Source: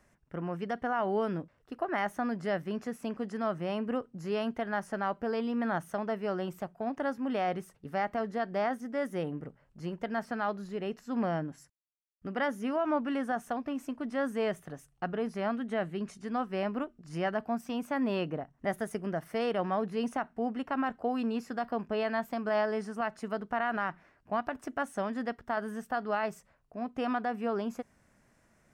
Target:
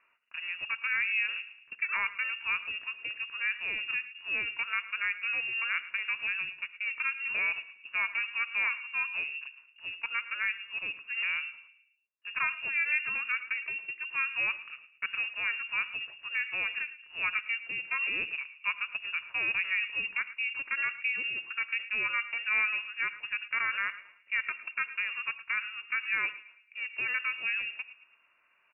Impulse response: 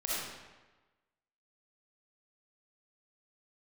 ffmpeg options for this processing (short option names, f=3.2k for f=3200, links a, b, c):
-filter_complex "[0:a]highpass=280,bandreject=f=2.2k:w=18,asplit=2[a][b];[b]adelay=110,lowpass=f=1.3k:p=1,volume=-15dB,asplit=2[c][d];[d]adelay=110,lowpass=f=1.3k:p=1,volume=0.49,asplit=2[e][f];[f]adelay=110,lowpass=f=1.3k:p=1,volume=0.49,asplit=2[g][h];[h]adelay=110,lowpass=f=1.3k:p=1,volume=0.49,asplit=2[i][j];[j]adelay=110,lowpass=f=1.3k:p=1,volume=0.49[k];[a][c][e][g][i][k]amix=inputs=6:normalize=0,asplit=2[l][m];[1:a]atrim=start_sample=2205,afade=t=out:st=0.15:d=0.01,atrim=end_sample=7056,asetrate=35280,aresample=44100[n];[m][n]afir=irnorm=-1:irlink=0,volume=-20dB[o];[l][o]amix=inputs=2:normalize=0,lowpass=f=2.6k:t=q:w=0.5098,lowpass=f=2.6k:t=q:w=0.6013,lowpass=f=2.6k:t=q:w=0.9,lowpass=f=2.6k:t=q:w=2.563,afreqshift=-3000"